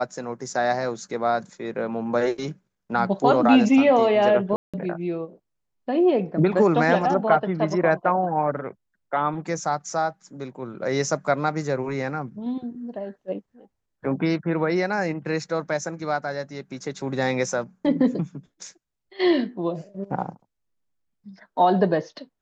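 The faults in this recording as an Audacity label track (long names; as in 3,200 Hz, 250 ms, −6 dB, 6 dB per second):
4.560000	4.740000	drop-out 176 ms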